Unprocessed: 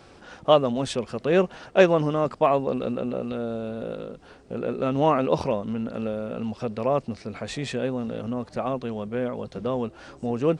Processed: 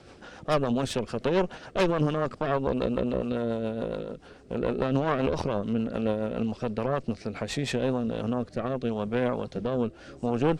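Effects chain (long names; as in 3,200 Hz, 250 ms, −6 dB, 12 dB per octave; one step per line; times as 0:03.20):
harmonic generator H 6 −13 dB, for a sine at −3 dBFS
brickwall limiter −14.5 dBFS, peak gain reduction 11 dB
rotating-speaker cabinet horn 7 Hz, later 0.8 Hz, at 0:07.46
level +2 dB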